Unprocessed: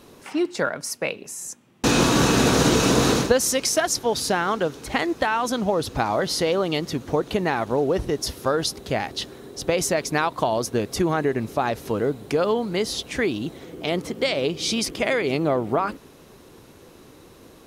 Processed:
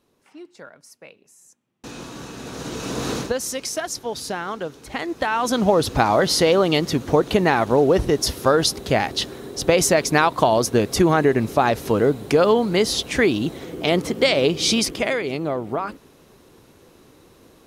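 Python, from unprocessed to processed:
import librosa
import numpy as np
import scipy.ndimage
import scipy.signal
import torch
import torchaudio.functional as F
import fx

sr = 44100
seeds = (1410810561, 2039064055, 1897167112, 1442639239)

y = fx.gain(x, sr, db=fx.line((2.38, -18.0), (3.15, -5.5), (4.92, -5.5), (5.64, 5.5), (14.71, 5.5), (15.31, -3.0)))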